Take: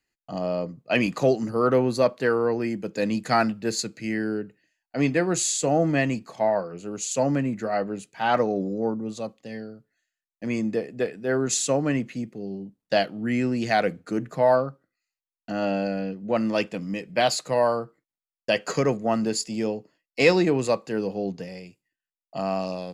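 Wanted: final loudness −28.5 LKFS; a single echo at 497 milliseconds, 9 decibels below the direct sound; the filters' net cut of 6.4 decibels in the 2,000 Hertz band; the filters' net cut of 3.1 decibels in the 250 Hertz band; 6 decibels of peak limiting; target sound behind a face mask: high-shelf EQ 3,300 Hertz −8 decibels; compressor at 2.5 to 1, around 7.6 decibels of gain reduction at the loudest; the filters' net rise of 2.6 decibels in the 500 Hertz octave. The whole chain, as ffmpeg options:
ffmpeg -i in.wav -af "equalizer=frequency=250:width_type=o:gain=-5.5,equalizer=frequency=500:width_type=o:gain=5,equalizer=frequency=2000:width_type=o:gain=-6,acompressor=threshold=-23dB:ratio=2.5,alimiter=limit=-18dB:level=0:latency=1,highshelf=frequency=3300:gain=-8,aecho=1:1:497:0.355,volume=1.5dB" out.wav

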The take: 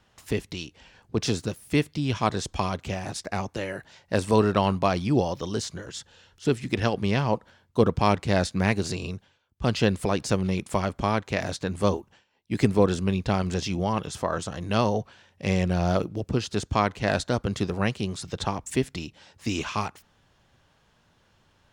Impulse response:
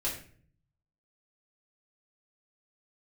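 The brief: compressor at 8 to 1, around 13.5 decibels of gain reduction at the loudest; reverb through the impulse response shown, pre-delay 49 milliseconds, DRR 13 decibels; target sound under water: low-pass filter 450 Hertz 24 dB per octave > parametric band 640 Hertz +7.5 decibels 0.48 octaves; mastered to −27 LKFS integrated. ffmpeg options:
-filter_complex "[0:a]acompressor=threshold=-29dB:ratio=8,asplit=2[link_01][link_02];[1:a]atrim=start_sample=2205,adelay=49[link_03];[link_02][link_03]afir=irnorm=-1:irlink=0,volume=-18dB[link_04];[link_01][link_04]amix=inputs=2:normalize=0,lowpass=frequency=450:width=0.5412,lowpass=frequency=450:width=1.3066,equalizer=frequency=640:width_type=o:width=0.48:gain=7.5,volume=10dB"

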